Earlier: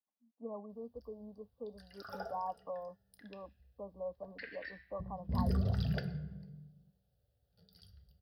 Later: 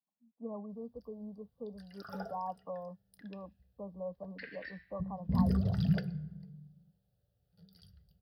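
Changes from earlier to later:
first sound: send -7.5 dB; master: add bell 170 Hz +11.5 dB 0.64 oct

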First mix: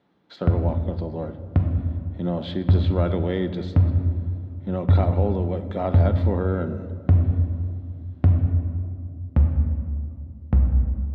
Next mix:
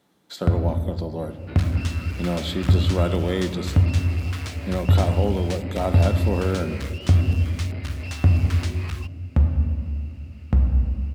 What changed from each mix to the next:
second sound: unmuted; master: remove air absorption 270 m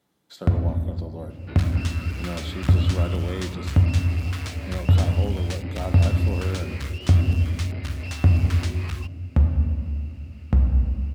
speech -7.5 dB

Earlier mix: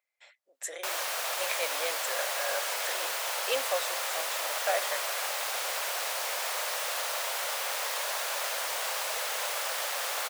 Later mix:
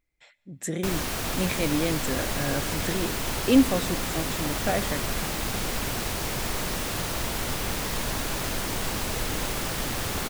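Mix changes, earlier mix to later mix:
speech: send on; master: remove elliptic high-pass 540 Hz, stop band 70 dB

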